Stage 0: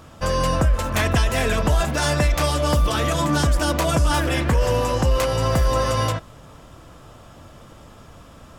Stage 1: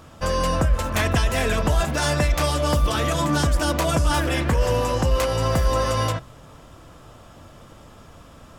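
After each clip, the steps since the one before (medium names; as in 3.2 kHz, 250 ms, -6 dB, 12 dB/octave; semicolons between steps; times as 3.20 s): de-hum 65.05 Hz, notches 3; trim -1 dB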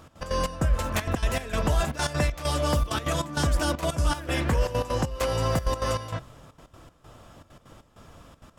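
trance gate "x.x.xx..xxxx" 196 bpm -12 dB; trim -3.5 dB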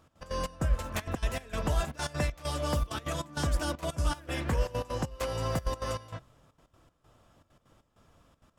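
upward expansion 1.5:1, over -37 dBFS; trim -3 dB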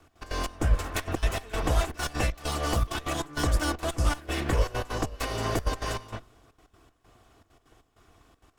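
comb filter that takes the minimum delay 2.7 ms; trim +5 dB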